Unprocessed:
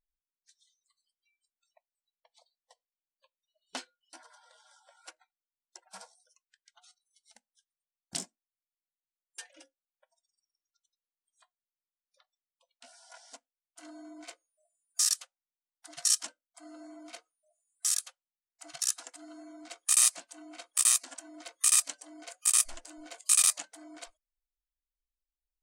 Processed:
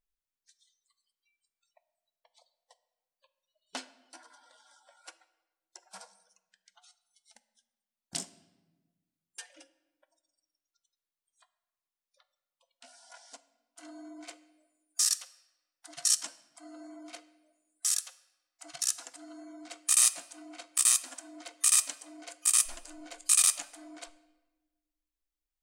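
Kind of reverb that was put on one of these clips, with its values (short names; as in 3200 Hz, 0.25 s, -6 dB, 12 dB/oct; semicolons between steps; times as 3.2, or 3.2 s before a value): shoebox room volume 840 m³, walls mixed, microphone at 0.31 m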